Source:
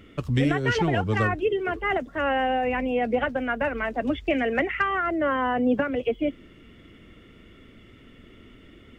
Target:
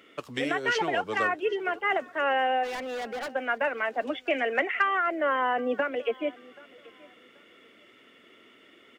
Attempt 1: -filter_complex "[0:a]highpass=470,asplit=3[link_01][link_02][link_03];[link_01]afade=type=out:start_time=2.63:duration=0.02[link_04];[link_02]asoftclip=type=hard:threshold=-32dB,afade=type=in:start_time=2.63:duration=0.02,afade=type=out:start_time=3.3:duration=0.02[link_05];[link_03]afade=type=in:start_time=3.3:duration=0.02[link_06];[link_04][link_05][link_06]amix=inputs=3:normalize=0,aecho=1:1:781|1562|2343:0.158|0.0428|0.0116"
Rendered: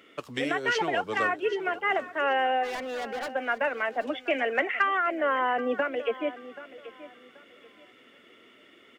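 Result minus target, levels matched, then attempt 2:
echo-to-direct +7.5 dB
-filter_complex "[0:a]highpass=470,asplit=3[link_01][link_02][link_03];[link_01]afade=type=out:start_time=2.63:duration=0.02[link_04];[link_02]asoftclip=type=hard:threshold=-32dB,afade=type=in:start_time=2.63:duration=0.02,afade=type=out:start_time=3.3:duration=0.02[link_05];[link_03]afade=type=in:start_time=3.3:duration=0.02[link_06];[link_04][link_05][link_06]amix=inputs=3:normalize=0,aecho=1:1:781|1562:0.0668|0.018"

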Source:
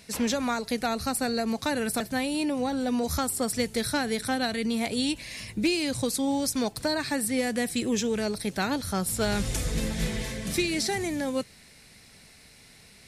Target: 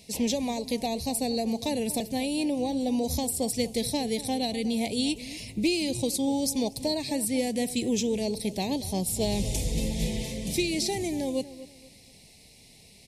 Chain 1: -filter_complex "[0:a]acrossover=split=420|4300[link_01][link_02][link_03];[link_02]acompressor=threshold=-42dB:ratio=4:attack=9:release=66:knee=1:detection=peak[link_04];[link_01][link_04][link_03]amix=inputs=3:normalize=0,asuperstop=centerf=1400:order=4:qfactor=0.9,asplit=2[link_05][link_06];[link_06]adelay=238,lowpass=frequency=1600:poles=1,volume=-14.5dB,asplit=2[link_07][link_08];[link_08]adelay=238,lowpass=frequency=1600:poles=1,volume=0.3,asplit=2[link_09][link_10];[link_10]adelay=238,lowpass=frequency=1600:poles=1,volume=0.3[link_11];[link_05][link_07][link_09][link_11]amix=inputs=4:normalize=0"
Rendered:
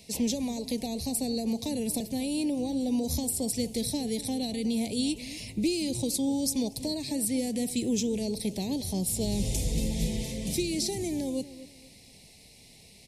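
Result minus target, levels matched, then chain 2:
downward compressor: peak gain reduction +13.5 dB
-filter_complex "[0:a]asuperstop=centerf=1400:order=4:qfactor=0.9,asplit=2[link_01][link_02];[link_02]adelay=238,lowpass=frequency=1600:poles=1,volume=-14.5dB,asplit=2[link_03][link_04];[link_04]adelay=238,lowpass=frequency=1600:poles=1,volume=0.3,asplit=2[link_05][link_06];[link_06]adelay=238,lowpass=frequency=1600:poles=1,volume=0.3[link_07];[link_01][link_03][link_05][link_07]amix=inputs=4:normalize=0"

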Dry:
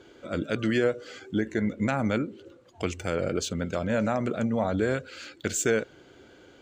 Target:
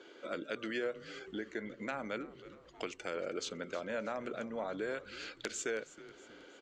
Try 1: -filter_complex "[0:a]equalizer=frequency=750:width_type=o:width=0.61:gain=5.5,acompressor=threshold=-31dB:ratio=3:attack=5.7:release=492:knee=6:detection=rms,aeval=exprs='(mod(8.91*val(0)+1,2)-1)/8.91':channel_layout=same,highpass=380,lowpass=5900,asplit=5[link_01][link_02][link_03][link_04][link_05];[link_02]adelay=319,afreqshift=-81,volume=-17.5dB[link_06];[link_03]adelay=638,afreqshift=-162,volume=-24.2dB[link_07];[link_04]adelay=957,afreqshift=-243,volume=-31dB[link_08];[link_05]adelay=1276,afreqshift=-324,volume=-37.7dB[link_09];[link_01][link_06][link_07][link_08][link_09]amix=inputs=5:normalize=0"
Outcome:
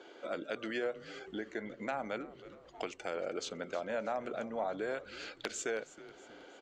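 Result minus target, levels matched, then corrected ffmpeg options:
1,000 Hz band +2.5 dB
-filter_complex "[0:a]equalizer=frequency=750:width_type=o:width=0.61:gain=-3.5,acompressor=threshold=-31dB:ratio=3:attack=5.7:release=492:knee=6:detection=rms,aeval=exprs='(mod(8.91*val(0)+1,2)-1)/8.91':channel_layout=same,highpass=380,lowpass=5900,asplit=5[link_01][link_02][link_03][link_04][link_05];[link_02]adelay=319,afreqshift=-81,volume=-17.5dB[link_06];[link_03]adelay=638,afreqshift=-162,volume=-24.2dB[link_07];[link_04]adelay=957,afreqshift=-243,volume=-31dB[link_08];[link_05]adelay=1276,afreqshift=-324,volume=-37.7dB[link_09];[link_01][link_06][link_07][link_08][link_09]amix=inputs=5:normalize=0"

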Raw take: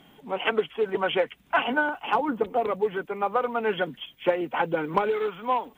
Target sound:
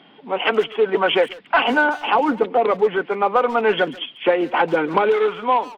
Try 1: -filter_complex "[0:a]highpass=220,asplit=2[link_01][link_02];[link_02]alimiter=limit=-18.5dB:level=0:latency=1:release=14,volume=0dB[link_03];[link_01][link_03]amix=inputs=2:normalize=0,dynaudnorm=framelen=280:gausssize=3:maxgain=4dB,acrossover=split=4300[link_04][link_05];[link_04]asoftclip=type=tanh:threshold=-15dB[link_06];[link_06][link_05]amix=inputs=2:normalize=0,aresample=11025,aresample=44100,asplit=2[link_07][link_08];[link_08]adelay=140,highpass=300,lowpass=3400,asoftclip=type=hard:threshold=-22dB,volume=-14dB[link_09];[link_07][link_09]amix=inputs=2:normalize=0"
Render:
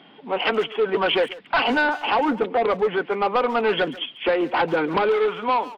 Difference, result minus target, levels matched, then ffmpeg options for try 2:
soft clipping: distortion +14 dB
-filter_complex "[0:a]highpass=220,asplit=2[link_01][link_02];[link_02]alimiter=limit=-18.5dB:level=0:latency=1:release=14,volume=0dB[link_03];[link_01][link_03]amix=inputs=2:normalize=0,dynaudnorm=framelen=280:gausssize=3:maxgain=4dB,acrossover=split=4300[link_04][link_05];[link_04]asoftclip=type=tanh:threshold=-4.5dB[link_06];[link_06][link_05]amix=inputs=2:normalize=0,aresample=11025,aresample=44100,asplit=2[link_07][link_08];[link_08]adelay=140,highpass=300,lowpass=3400,asoftclip=type=hard:threshold=-22dB,volume=-14dB[link_09];[link_07][link_09]amix=inputs=2:normalize=0"

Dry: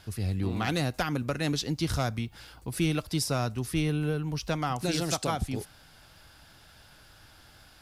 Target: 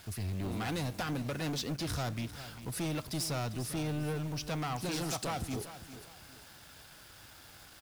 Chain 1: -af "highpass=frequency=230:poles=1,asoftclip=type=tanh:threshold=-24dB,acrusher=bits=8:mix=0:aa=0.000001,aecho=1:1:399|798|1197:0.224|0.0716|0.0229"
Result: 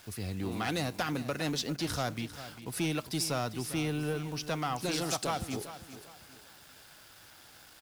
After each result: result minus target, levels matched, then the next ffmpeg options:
soft clipping: distortion −8 dB; 125 Hz band −3.0 dB
-af "highpass=frequency=230:poles=1,asoftclip=type=tanh:threshold=-31.5dB,acrusher=bits=8:mix=0:aa=0.000001,aecho=1:1:399|798|1197:0.224|0.0716|0.0229"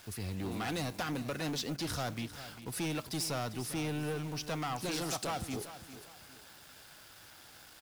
125 Hz band −3.0 dB
-af "highpass=frequency=74:poles=1,asoftclip=type=tanh:threshold=-31.5dB,acrusher=bits=8:mix=0:aa=0.000001,aecho=1:1:399|798|1197:0.224|0.0716|0.0229"

